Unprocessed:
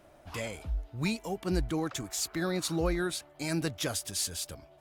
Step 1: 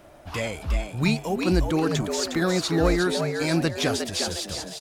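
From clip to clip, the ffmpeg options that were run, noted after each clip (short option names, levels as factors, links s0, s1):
-filter_complex "[0:a]acrossover=split=6300[s0][s1];[s1]acompressor=threshold=0.00282:ratio=4:attack=1:release=60[s2];[s0][s2]amix=inputs=2:normalize=0,asplit=2[s3][s4];[s4]asplit=4[s5][s6][s7][s8];[s5]adelay=359,afreqshift=99,volume=0.501[s9];[s6]adelay=718,afreqshift=198,volume=0.18[s10];[s7]adelay=1077,afreqshift=297,volume=0.0653[s11];[s8]adelay=1436,afreqshift=396,volume=0.0234[s12];[s9][s10][s11][s12]amix=inputs=4:normalize=0[s13];[s3][s13]amix=inputs=2:normalize=0,volume=2.51"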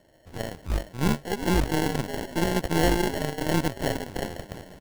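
-af "acrusher=samples=36:mix=1:aa=0.000001,aeval=exprs='0.355*(cos(1*acos(clip(val(0)/0.355,-1,1)))-cos(1*PI/2))+0.0631*(cos(5*acos(clip(val(0)/0.355,-1,1)))-cos(5*PI/2))+0.0447*(cos(6*acos(clip(val(0)/0.355,-1,1)))-cos(6*PI/2))+0.0708*(cos(7*acos(clip(val(0)/0.355,-1,1)))-cos(7*PI/2))':c=same,volume=0.668"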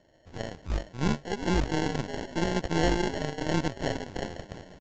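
-af "aresample=16000,aresample=44100,volume=0.708"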